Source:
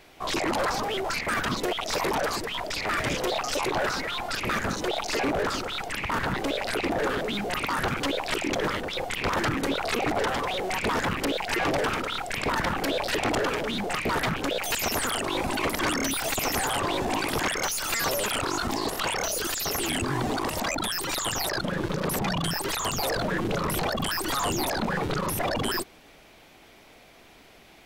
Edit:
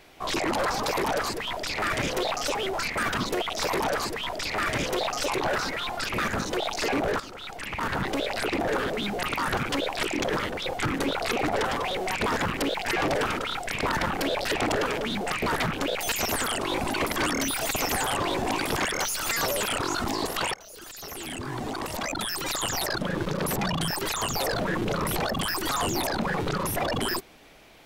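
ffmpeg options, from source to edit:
ffmpeg -i in.wav -filter_complex "[0:a]asplit=6[link_01][link_02][link_03][link_04][link_05][link_06];[link_01]atrim=end=0.862[link_07];[link_02]atrim=start=1.928:end=3.622[link_08];[link_03]atrim=start=0.858:end=5.51,asetpts=PTS-STARTPTS,afade=type=out:start_time=4.648:duration=0.004:curve=hsin:silence=0.223872[link_09];[link_04]atrim=start=5.51:end=9.142,asetpts=PTS-STARTPTS,afade=type=in:duration=0.82:silence=0.223872[link_10];[link_05]atrim=start=9.458:end=19.17,asetpts=PTS-STARTPTS,afade=type=out:start_time=9.708:duration=0.004:curve=hsin:silence=0.0707946[link_11];[link_06]atrim=start=19.17,asetpts=PTS-STARTPTS,afade=type=in:duration=2.06:silence=0.0707946[link_12];[link_07][link_08]acrossfade=duration=0.004:curve1=hsin:curve2=hsin[link_13];[link_09][link_10]concat=n=2:v=0:a=1[link_14];[link_13][link_14]acrossfade=duration=0.004:curve1=hsin:curve2=hsin[link_15];[link_11][link_12]concat=n=2:v=0:a=1[link_16];[link_15][link_16]acrossfade=duration=0.004:curve1=hsin:curve2=hsin" out.wav

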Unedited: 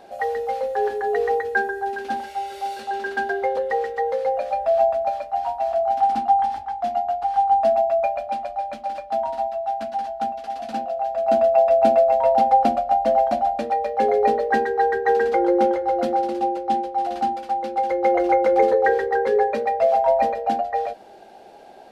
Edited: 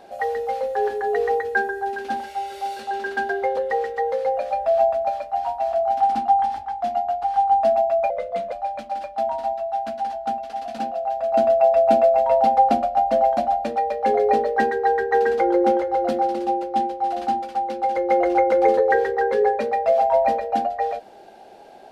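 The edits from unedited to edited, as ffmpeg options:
ffmpeg -i in.wav -filter_complex "[0:a]asplit=3[link_01][link_02][link_03];[link_01]atrim=end=8.104[link_04];[link_02]atrim=start=8.1:end=8.46,asetpts=PTS-STARTPTS,asetrate=37926,aresample=44100,atrim=end_sample=18460,asetpts=PTS-STARTPTS[link_05];[link_03]atrim=start=8.456[link_06];[link_04][link_05]acrossfade=duration=0.004:curve1=hsin:curve2=hsin[link_07];[link_07][link_06]acrossfade=duration=0.004:curve1=hsin:curve2=hsin" out.wav

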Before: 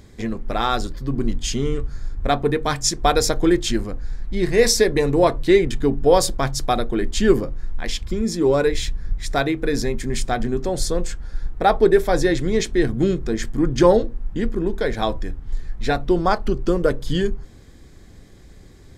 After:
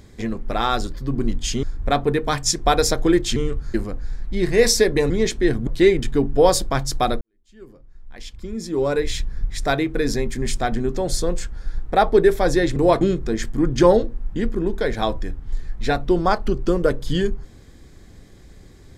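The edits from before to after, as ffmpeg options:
ffmpeg -i in.wav -filter_complex "[0:a]asplit=9[link_01][link_02][link_03][link_04][link_05][link_06][link_07][link_08][link_09];[link_01]atrim=end=1.632[link_10];[link_02]atrim=start=2.008:end=3.742[link_11];[link_03]atrim=start=1.628:end=2.012[link_12];[link_04]atrim=start=3.738:end=5.102[link_13];[link_05]atrim=start=12.438:end=13.012[link_14];[link_06]atrim=start=5.348:end=6.89,asetpts=PTS-STARTPTS,afade=type=out:start_time=1.538:duration=0.004:curve=hsin[link_15];[link_07]atrim=start=6.89:end=12.442,asetpts=PTS-STARTPTS,afade=type=in:duration=2.02:curve=qua[link_16];[link_08]atrim=start=5.098:end=5.352[link_17];[link_09]atrim=start=13.008[link_18];[link_10][link_11]acrossfade=duration=0.004:curve1=hsin:curve2=hsin[link_19];[link_19][link_12]acrossfade=duration=0.004:curve1=hsin:curve2=hsin[link_20];[link_20][link_13]acrossfade=duration=0.004:curve1=hsin:curve2=hsin[link_21];[link_21][link_14]acrossfade=duration=0.004:curve1=hsin:curve2=hsin[link_22];[link_15][link_16]concat=n=2:v=0:a=1[link_23];[link_22][link_23]acrossfade=duration=0.004:curve1=hsin:curve2=hsin[link_24];[link_24][link_17]acrossfade=duration=0.004:curve1=hsin:curve2=hsin[link_25];[link_25][link_18]acrossfade=duration=0.004:curve1=hsin:curve2=hsin" out.wav

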